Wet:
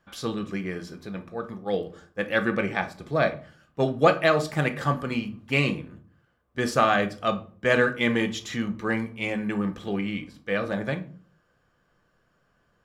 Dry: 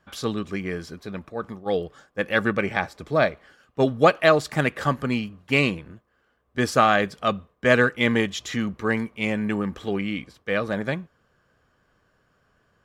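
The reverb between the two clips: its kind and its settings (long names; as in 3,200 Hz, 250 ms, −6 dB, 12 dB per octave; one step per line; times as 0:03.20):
rectangular room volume 320 cubic metres, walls furnished, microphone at 0.8 metres
level −3.5 dB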